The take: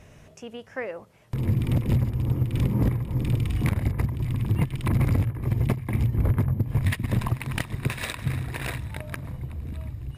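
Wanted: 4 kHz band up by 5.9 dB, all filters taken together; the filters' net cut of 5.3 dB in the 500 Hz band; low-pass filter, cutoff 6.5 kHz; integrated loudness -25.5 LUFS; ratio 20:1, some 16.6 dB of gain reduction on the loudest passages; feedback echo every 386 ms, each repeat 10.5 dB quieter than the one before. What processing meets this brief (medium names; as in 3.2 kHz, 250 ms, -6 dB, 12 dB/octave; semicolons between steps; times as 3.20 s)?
low-pass 6.5 kHz; peaking EQ 500 Hz -7 dB; peaking EQ 4 kHz +8 dB; compression 20:1, threshold -35 dBFS; feedback delay 386 ms, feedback 30%, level -10.5 dB; trim +15 dB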